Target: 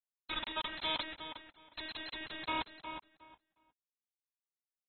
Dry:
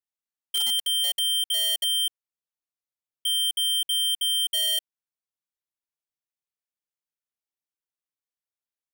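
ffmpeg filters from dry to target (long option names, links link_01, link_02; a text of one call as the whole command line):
ffmpeg -i in.wav -filter_complex "[0:a]equalizer=frequency=690:width=0.76:gain=2,aecho=1:1:1.5:0.72,bandreject=frequency=331.4:width_type=h:width=4,bandreject=frequency=662.8:width_type=h:width=4,bandreject=frequency=994.2:width_type=h:width=4,bandreject=frequency=1325.6:width_type=h:width=4,bandreject=frequency=1657:width_type=h:width=4,bandreject=frequency=1988.4:width_type=h:width=4,bandreject=frequency=2319.8:width_type=h:width=4,bandreject=frequency=2651.2:width_type=h:width=4,bandreject=frequency=2982.6:width_type=h:width=4,bandreject=frequency=3314:width_type=h:width=4,bandreject=frequency=3645.4:width_type=h:width=4,bandreject=frequency=3976.8:width_type=h:width=4,bandreject=frequency=4308.2:width_type=h:width=4,bandreject=frequency=4639.6:width_type=h:width=4,bandreject=frequency=4971:width_type=h:width=4,bandreject=frequency=5302.4:width_type=h:width=4,bandreject=frequency=5633.8:width_type=h:width=4,bandreject=frequency=5965.2:width_type=h:width=4,bandreject=frequency=6296.6:width_type=h:width=4,bandreject=frequency=6628:width_type=h:width=4,bandreject=frequency=6959.4:width_type=h:width=4,acrossover=split=1000|2500|7600[link_01][link_02][link_03][link_04];[link_02]acontrast=61[link_05];[link_01][link_05][link_03][link_04]amix=inputs=4:normalize=0,afreqshift=-90,afftfilt=real='hypot(re,im)*cos(PI*b)':imag='0':win_size=1024:overlap=0.75,acrusher=bits=4:mix=0:aa=0.000001,asetrate=80703,aresample=44100,asplit=2[link_06][link_07];[link_07]adelay=362,lowpass=frequency=3200:poles=1,volume=-9dB,asplit=2[link_08][link_09];[link_09]adelay=362,lowpass=frequency=3200:poles=1,volume=0.2,asplit=2[link_10][link_11];[link_11]adelay=362,lowpass=frequency=3200:poles=1,volume=0.2[link_12];[link_06][link_08][link_10][link_12]amix=inputs=4:normalize=0,volume=6.5dB" -ar 24000 -c:a aac -b:a 16k out.aac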